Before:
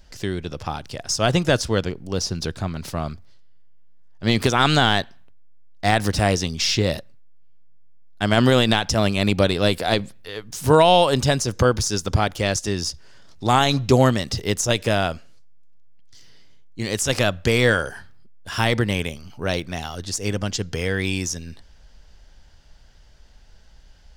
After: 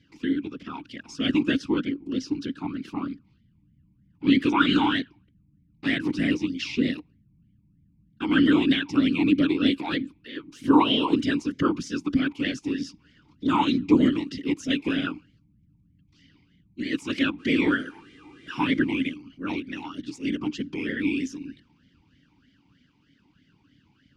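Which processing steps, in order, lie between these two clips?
17.38–19.13 buzz 400 Hz, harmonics 25, -46 dBFS -4 dB/oct; whisperiser; vowel sweep i-u 3.2 Hz; gain +8.5 dB

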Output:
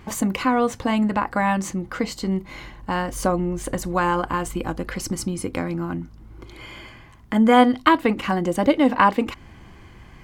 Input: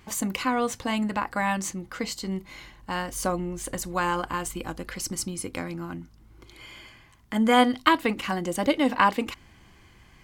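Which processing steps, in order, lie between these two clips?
high shelf 2200 Hz -10 dB; in parallel at -2 dB: compressor, threshold -36 dBFS, peak gain reduction 19.5 dB; on the sum: gain +5 dB

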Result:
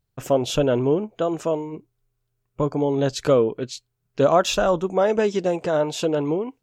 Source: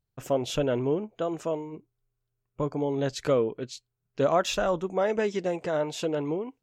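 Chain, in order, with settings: dynamic EQ 2000 Hz, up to -7 dB, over -53 dBFS, Q 3.5; gain +6.5 dB

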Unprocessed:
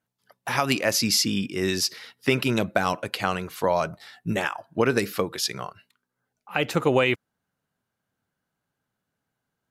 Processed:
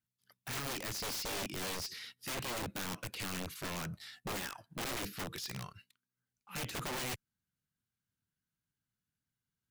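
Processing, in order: de-esser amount 90%; passive tone stack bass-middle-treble 6-0-2; wrapped overs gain 44 dB; sample leveller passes 1; gain +9.5 dB

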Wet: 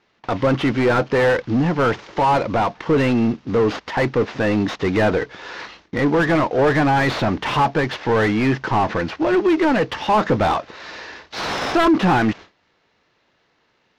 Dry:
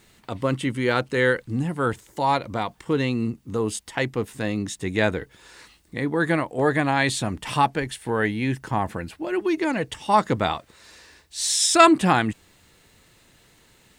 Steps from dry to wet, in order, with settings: CVSD 32 kbps; gate with hold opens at -43 dBFS; in parallel at -5 dB: sine folder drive 9 dB, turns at -3.5 dBFS; on the sum: overdrive pedal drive 22 dB, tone 1000 Hz, clips at -3.5 dBFS; gain -5 dB

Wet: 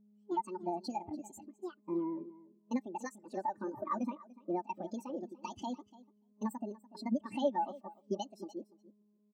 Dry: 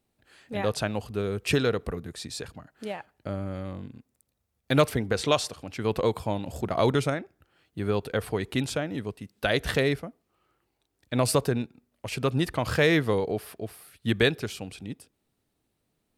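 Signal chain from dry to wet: bell 5500 Hz +7.5 dB 1.9 oct; comb 5.8 ms, depth 55%; compressor 5:1, threshold -31 dBFS, peak gain reduction 15.5 dB; buzz 120 Hz, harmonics 6, -49 dBFS -8 dB/oct; feedback echo 0.505 s, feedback 28%, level -8 dB; speed mistake 45 rpm record played at 78 rpm; spectral expander 2.5:1; gain -5 dB

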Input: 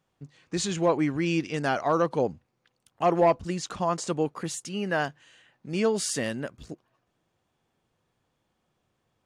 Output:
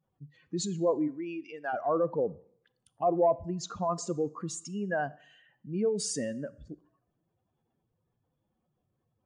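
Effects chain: spectral contrast raised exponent 2; 1.07–1.72 HPF 340 Hz -> 810 Hz 12 dB/oct; Schroeder reverb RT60 0.61 s, combs from 27 ms, DRR 18.5 dB; gain -3.5 dB

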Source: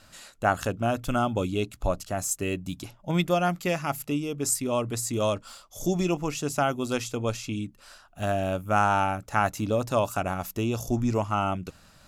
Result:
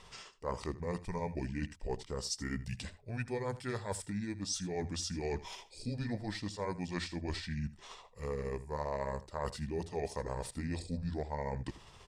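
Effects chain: delay-line pitch shifter -6 st; reverse; compressor 4:1, threshold -36 dBFS, peak gain reduction 15.5 dB; reverse; echo 80 ms -17 dB

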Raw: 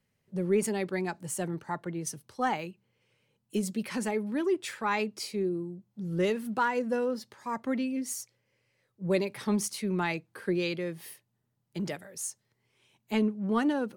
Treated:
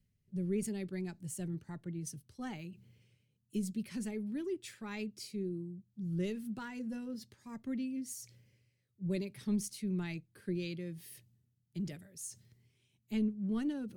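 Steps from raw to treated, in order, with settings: passive tone stack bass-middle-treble 10-0-1; notch 490 Hz, Q 12; reverse; upward compressor, threshold -59 dBFS; reverse; gain +12 dB

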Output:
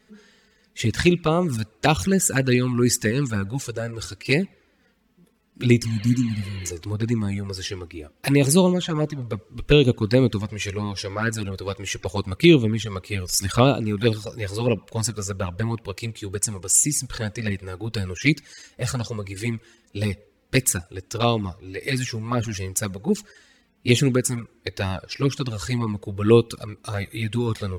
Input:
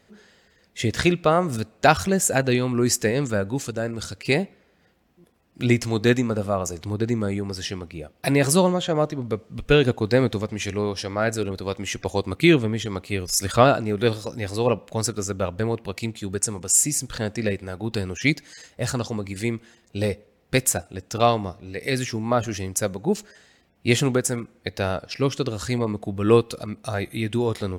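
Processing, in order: spectral repair 5.85–6.68, 300–4500 Hz before; envelope flanger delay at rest 4.7 ms, full sweep at -14.5 dBFS; bell 670 Hz -8 dB 0.57 oct; gain +3.5 dB

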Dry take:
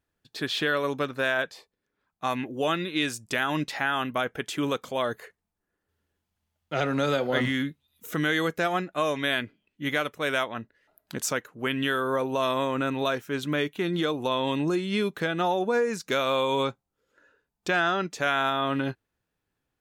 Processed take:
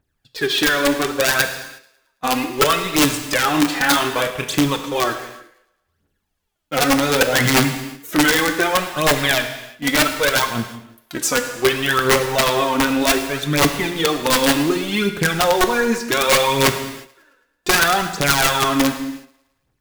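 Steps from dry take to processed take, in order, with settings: in parallel at -9 dB: bit-crush 5-bit; on the sum: phaser 0.66 Hz, delay 4.2 ms, feedback 72%; wrapped overs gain 11.5 dB; 3.5–4.65 doubler 31 ms -7 dB; on a send: thinning echo 0.109 s, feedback 49%, high-pass 170 Hz, level -21 dB; on the sum: non-linear reverb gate 0.39 s falling, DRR 6.5 dB; gain +3 dB

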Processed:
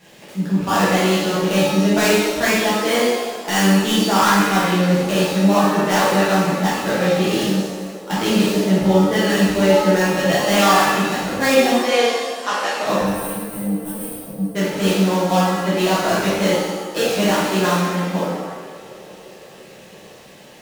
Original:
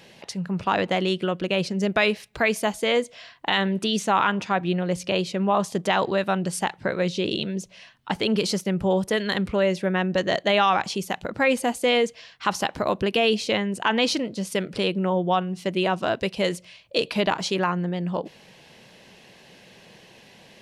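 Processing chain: switching dead time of 0.11 ms; 11.77–12.85 three-band isolator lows -23 dB, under 370 Hz, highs -22 dB, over 7400 Hz; 12.96–14.55 spectral gain 200–8100 Hz -25 dB; on a send: narrowing echo 0.345 s, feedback 79%, band-pass 450 Hz, level -16.5 dB; on the sum: shimmer reverb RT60 1.1 s, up +7 st, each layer -8 dB, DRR -9.5 dB; gain -3.5 dB

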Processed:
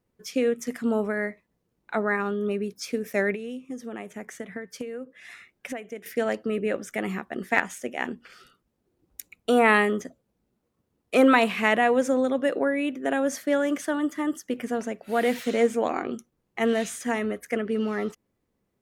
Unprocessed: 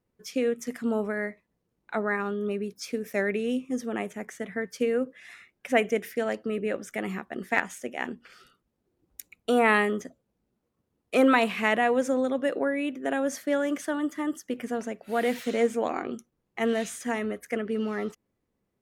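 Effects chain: 3.34–6.06 compressor 20:1, threshold -34 dBFS, peak gain reduction 19 dB; gain +2.5 dB

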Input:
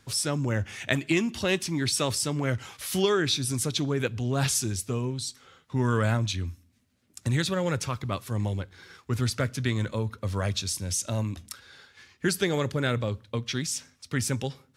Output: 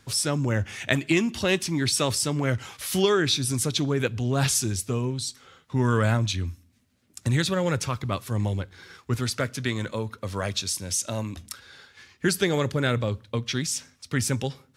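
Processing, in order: 9.15–11.35 low shelf 130 Hz -10.5 dB; gain +2.5 dB

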